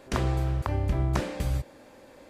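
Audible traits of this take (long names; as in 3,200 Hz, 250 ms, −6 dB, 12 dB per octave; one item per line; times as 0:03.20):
background noise floor −53 dBFS
spectral slope −6.5 dB per octave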